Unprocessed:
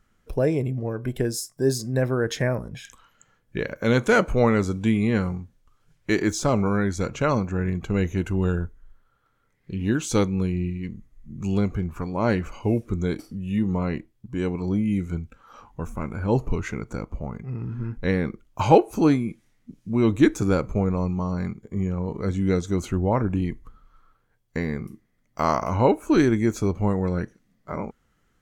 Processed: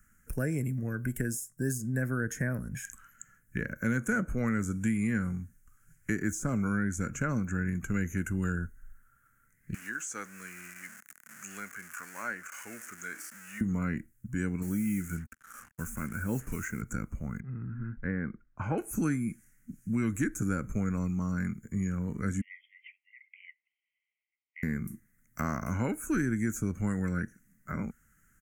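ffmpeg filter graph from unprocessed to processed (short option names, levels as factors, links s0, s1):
-filter_complex "[0:a]asettb=1/sr,asplit=3[s0][s1][s2];[s0]atrim=end=9.744[s3];[s1]atrim=start=9.74:end=13.61,asetpts=PTS-STARTPTS,afade=t=in:d=0.004:c=qsin,afade=t=out:st=3.866:d=0.004:c=qsin,aeval=exprs='val(0)+0.5*0.0188*sgn(val(0))':c=same,highpass=900,acrossover=split=7700[s4][s5];[s5]acompressor=threshold=0.00112:ratio=4:attack=1:release=60[s6];[s4][s6]amix=inputs=2:normalize=0[s7];[s2]atrim=start=13.606[s8];[s3][s7]acrossfade=d=0.004:c1=hsin:c2=qsin[s9];[s9][s8]acrossfade=d=0.004:c1=qsin:c2=hsin,asettb=1/sr,asplit=3[s10][s11][s12];[s10]atrim=end=14.624[s13];[s11]atrim=start=14.62:end=16.82,asetpts=PTS-STARTPTS,afade=t=in:d=0.004:c=qsin,afade=t=out:st=2.196:d=0.004:c=qsin,lowshelf=f=160:g=-9.5,acrusher=bits=7:mix=0:aa=0.5[s14];[s12]atrim=start=16.816[s15];[s13][s14]acrossfade=d=0.004:c1=hsin:c2=qsin[s16];[s16][s15]acrossfade=d=0.004:c1=qsin:c2=hsin,asettb=1/sr,asplit=3[s17][s18][s19];[s17]atrim=end=17.404[s20];[s18]atrim=start=17.4:end=18.78,asetpts=PTS-STARTPTS,afade=t=in:d=0.004:c=qsin,afade=t=out:st=1.376:d=0.004:c=qsin,lowpass=1300,lowshelf=f=350:g=-7.5[s21];[s19]atrim=start=18.776[s22];[s20][s21]acrossfade=d=0.004:c1=hsin:c2=qsin[s23];[s23][s22]acrossfade=d=0.004:c1=qsin:c2=hsin,asettb=1/sr,asplit=3[s24][s25][s26];[s24]atrim=end=22.414[s27];[s25]atrim=start=22.41:end=24.63,asetpts=PTS-STARTPTS,afade=t=in:d=0.004:c=qsin,afade=t=out:st=2.216:d=0.004:c=qsin,afreqshift=-160,asuperpass=centerf=2600:order=20:qfactor=1.9[s28];[s26]atrim=start=24.626[s29];[s27][s28]acrossfade=d=0.004:c1=hsin:c2=qsin[s30];[s30][s29]acrossfade=d=0.004:c1=qsin:c2=hsin,firequalizer=gain_entry='entry(230,0);entry(380,-12);entry(930,-16);entry(1500,7);entry(3700,-20);entry(6700,9);entry(11000,13)':delay=0.05:min_phase=1,acrossover=split=220|980[s31][s32][s33];[s31]acompressor=threshold=0.02:ratio=4[s34];[s32]acompressor=threshold=0.0282:ratio=4[s35];[s33]acompressor=threshold=0.0112:ratio=4[s36];[s34][s35][s36]amix=inputs=3:normalize=0"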